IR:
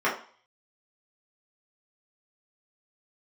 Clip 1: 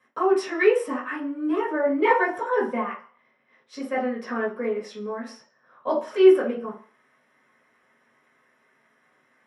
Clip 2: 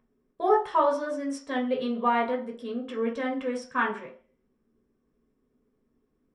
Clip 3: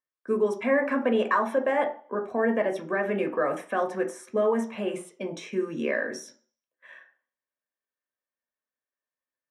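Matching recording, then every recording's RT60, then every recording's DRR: 1; 0.45, 0.45, 0.45 seconds; −8.0, −2.0, 3.5 decibels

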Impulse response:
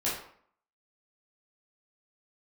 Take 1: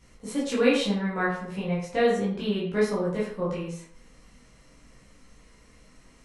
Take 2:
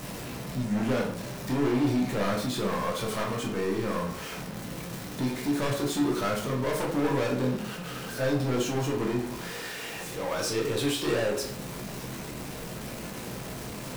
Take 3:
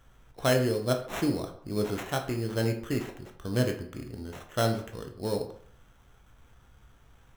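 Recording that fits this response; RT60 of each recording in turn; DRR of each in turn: 1; 0.60, 0.60, 0.60 seconds; −8.5, −1.5, 4.0 decibels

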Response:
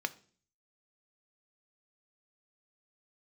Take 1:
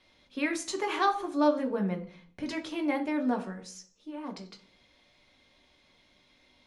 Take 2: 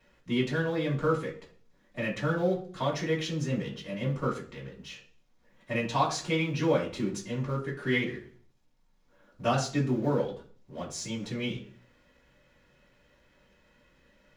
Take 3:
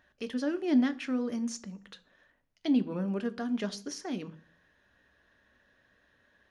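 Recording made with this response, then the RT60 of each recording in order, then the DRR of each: 3; 0.45, 0.45, 0.45 seconds; 2.5, −6.5, 11.0 decibels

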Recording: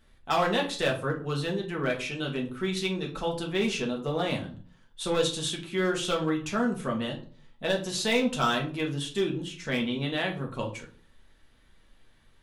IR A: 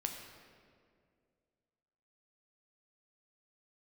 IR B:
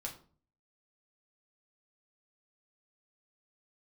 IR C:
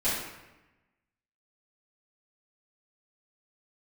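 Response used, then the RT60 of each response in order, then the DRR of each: B; 2.2, 0.45, 1.0 seconds; 2.5, −1.0, −13.5 decibels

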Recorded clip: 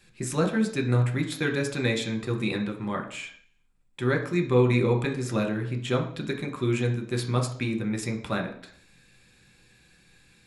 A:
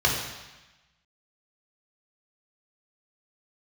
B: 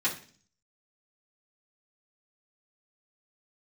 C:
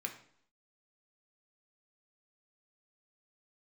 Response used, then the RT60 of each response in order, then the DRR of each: C; 1.1, 0.45, 0.65 seconds; −1.5, −10.0, 2.5 decibels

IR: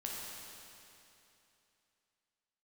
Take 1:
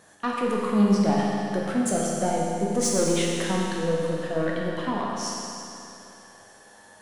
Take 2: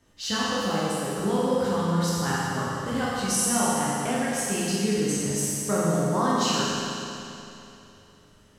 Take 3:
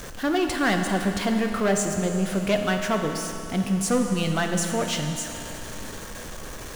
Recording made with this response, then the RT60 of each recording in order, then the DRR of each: 1; 2.9, 2.9, 2.9 seconds; −3.5, −8.5, 4.0 decibels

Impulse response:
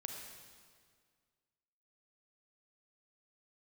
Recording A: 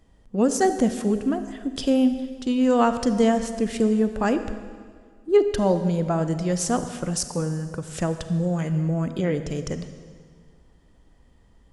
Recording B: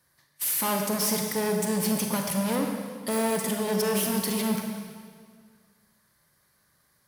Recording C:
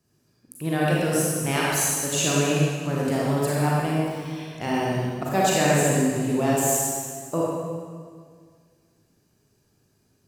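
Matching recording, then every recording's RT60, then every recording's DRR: B; 1.9, 1.9, 1.9 seconds; 9.5, 2.0, −5.5 decibels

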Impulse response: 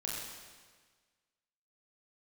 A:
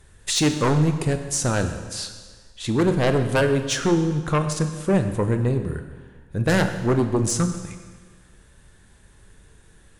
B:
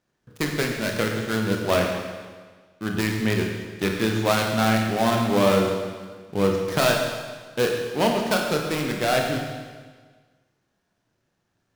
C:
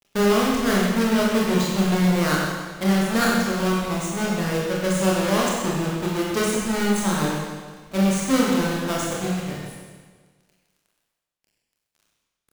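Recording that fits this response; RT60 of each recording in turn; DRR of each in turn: C; 1.5, 1.5, 1.5 seconds; 7.5, 1.0, −4.5 decibels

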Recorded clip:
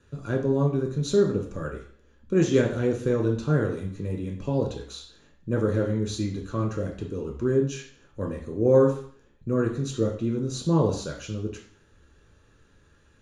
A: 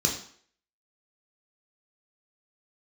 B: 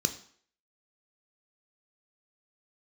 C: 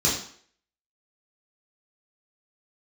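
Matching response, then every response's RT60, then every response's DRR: A; 0.55, 0.55, 0.55 seconds; 0.0, 8.0, −6.5 decibels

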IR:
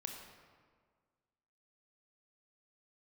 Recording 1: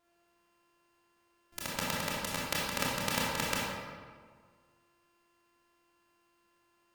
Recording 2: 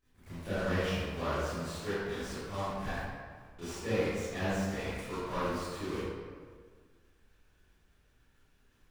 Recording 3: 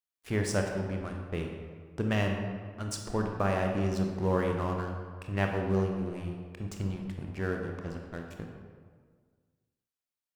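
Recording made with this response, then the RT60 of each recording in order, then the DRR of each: 3; 1.7, 1.7, 1.7 seconds; −6.0, −15.5, 2.0 decibels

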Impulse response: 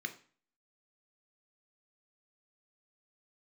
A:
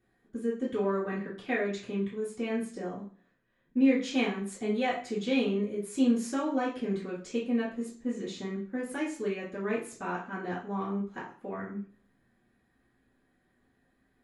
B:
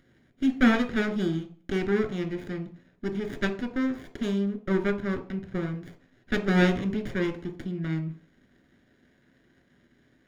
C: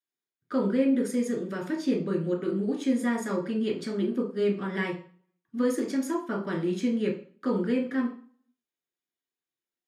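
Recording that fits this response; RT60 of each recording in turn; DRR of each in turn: B; 0.40, 0.40, 0.40 seconds; −10.0, 7.0, −1.0 decibels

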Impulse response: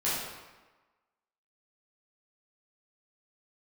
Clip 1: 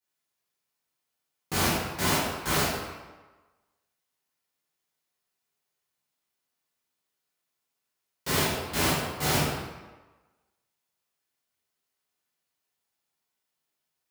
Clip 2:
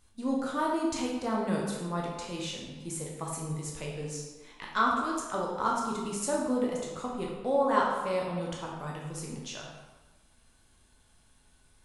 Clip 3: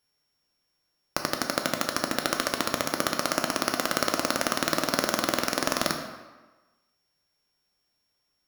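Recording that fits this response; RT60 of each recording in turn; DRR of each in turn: 1; 1.2, 1.2, 1.2 seconds; −10.0, −3.0, 3.5 decibels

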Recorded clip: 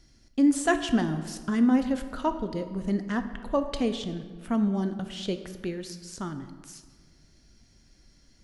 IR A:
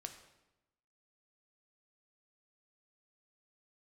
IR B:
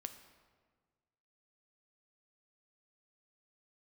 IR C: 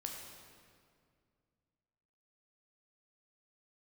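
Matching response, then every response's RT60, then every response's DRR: B; 0.95, 1.6, 2.1 seconds; 5.5, 8.0, 0.5 decibels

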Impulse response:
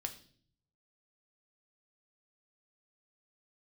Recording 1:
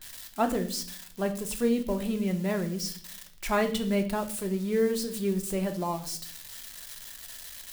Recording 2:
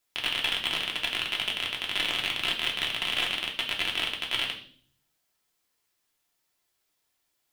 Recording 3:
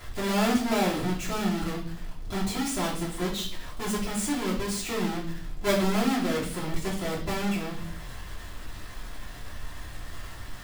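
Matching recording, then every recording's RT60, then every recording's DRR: 1; 0.50, 0.50, 0.50 seconds; 5.0, −0.5, −6.0 decibels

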